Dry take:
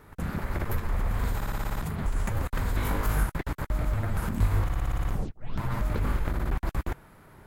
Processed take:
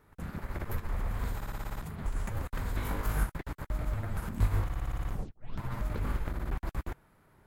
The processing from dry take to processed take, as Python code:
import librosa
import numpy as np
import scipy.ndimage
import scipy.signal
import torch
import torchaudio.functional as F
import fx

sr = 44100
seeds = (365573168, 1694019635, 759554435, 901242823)

y = fx.upward_expand(x, sr, threshold_db=-36.0, expansion=1.5)
y = y * librosa.db_to_amplitude(-2.0)